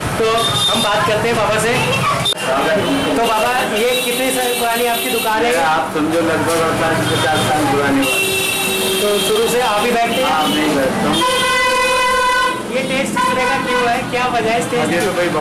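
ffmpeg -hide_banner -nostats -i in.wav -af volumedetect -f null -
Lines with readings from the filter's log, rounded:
mean_volume: -15.4 dB
max_volume: -8.2 dB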